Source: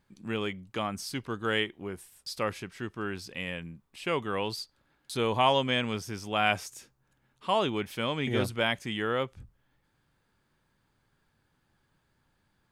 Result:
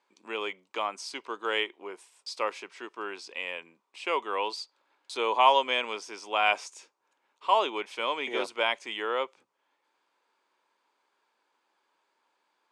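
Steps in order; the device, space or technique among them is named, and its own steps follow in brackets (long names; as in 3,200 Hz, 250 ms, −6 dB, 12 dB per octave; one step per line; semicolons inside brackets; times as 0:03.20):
phone speaker on a table (loudspeaker in its box 370–8,200 Hz, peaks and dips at 980 Hz +8 dB, 1,700 Hz −4 dB, 2,400 Hz +4 dB)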